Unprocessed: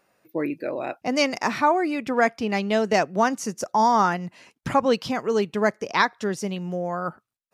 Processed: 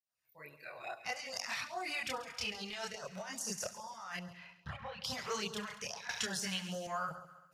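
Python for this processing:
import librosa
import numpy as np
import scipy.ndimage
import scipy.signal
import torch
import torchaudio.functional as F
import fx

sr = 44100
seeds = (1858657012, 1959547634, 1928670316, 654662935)

p1 = fx.fade_in_head(x, sr, length_s=1.56)
p2 = fx.tone_stack(p1, sr, knobs='10-0-10')
p3 = fx.over_compress(p2, sr, threshold_db=-40.0, ratio=-1.0)
p4 = fx.chorus_voices(p3, sr, voices=2, hz=0.28, base_ms=27, depth_ms=1.4, mix_pct=55)
p5 = fx.air_absorb(p4, sr, metres=400.0, at=(4.19, 5.04))
p6 = p5 + fx.echo_heads(p5, sr, ms=68, heads='first and second', feedback_pct=52, wet_db=-16, dry=0)
p7 = fx.filter_lfo_notch(p6, sr, shape='sine', hz=2.4, low_hz=260.0, high_hz=2400.0, q=1.1)
p8 = fx.band_squash(p7, sr, depth_pct=100, at=(6.09, 6.87))
y = p8 * 10.0 ** (2.5 / 20.0)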